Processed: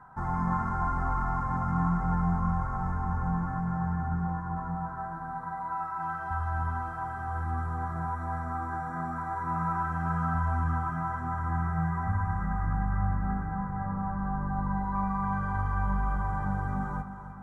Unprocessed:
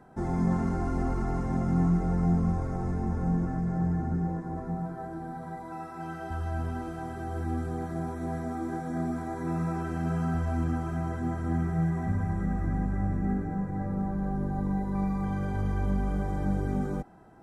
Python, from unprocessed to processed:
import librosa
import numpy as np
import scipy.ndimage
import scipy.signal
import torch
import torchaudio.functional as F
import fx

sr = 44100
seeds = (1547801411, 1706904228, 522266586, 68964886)

p1 = fx.curve_eq(x, sr, hz=(130.0, 350.0, 660.0, 950.0, 1400.0, 2700.0), db=(0, -14, -6, 12, 9, -10))
y = p1 + fx.echo_feedback(p1, sr, ms=303, feedback_pct=58, wet_db=-12, dry=0)